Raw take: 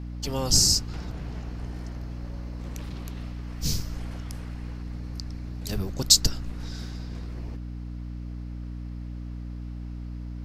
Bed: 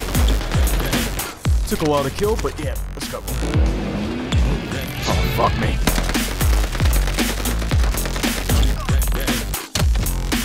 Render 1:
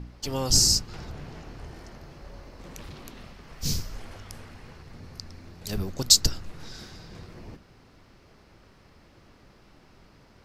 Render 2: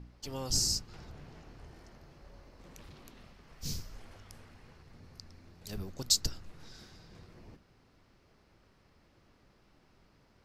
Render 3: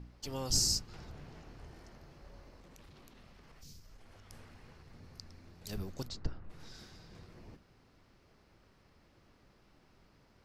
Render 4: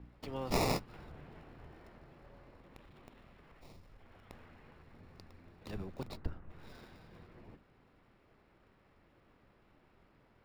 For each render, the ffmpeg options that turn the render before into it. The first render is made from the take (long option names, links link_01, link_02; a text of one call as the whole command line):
ffmpeg -i in.wav -af "bandreject=frequency=60:width_type=h:width=4,bandreject=frequency=120:width_type=h:width=4,bandreject=frequency=180:width_type=h:width=4,bandreject=frequency=240:width_type=h:width=4,bandreject=frequency=300:width_type=h:width=4" out.wav
ffmpeg -i in.wav -af "volume=-10dB" out.wav
ffmpeg -i in.wav -filter_complex "[0:a]asplit=3[link_01][link_02][link_03];[link_01]afade=type=out:start_time=2.58:duration=0.02[link_04];[link_02]acompressor=threshold=-53dB:ratio=4:attack=3.2:release=140:knee=1:detection=peak,afade=type=in:start_time=2.58:duration=0.02,afade=type=out:start_time=4.3:duration=0.02[link_05];[link_03]afade=type=in:start_time=4.3:duration=0.02[link_06];[link_04][link_05][link_06]amix=inputs=3:normalize=0,asplit=3[link_07][link_08][link_09];[link_07]afade=type=out:start_time=6.07:duration=0.02[link_10];[link_08]lowpass=1600,afade=type=in:start_time=6.07:duration=0.02,afade=type=out:start_time=6.49:duration=0.02[link_11];[link_09]afade=type=in:start_time=6.49:duration=0.02[link_12];[link_10][link_11][link_12]amix=inputs=3:normalize=0" out.wav
ffmpeg -i in.wav -filter_complex "[0:a]acrossover=split=210|3600[link_01][link_02][link_03];[link_01]tremolo=f=83:d=0.75[link_04];[link_03]acrusher=samples=28:mix=1:aa=0.000001[link_05];[link_04][link_02][link_05]amix=inputs=3:normalize=0" out.wav